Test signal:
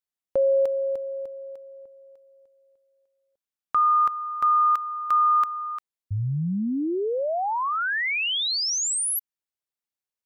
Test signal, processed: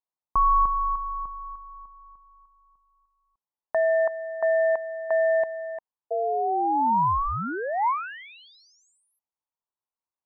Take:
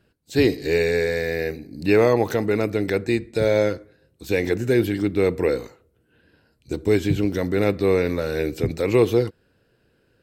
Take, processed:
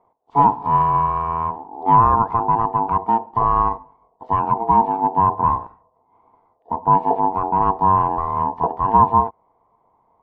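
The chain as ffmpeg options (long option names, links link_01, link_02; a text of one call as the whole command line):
ffmpeg -i in.wav -af "aeval=exprs='val(0)*sin(2*PI*570*n/s)':channel_layout=same,lowpass=frequency=970:width_type=q:width=3.7,volume=-1dB" out.wav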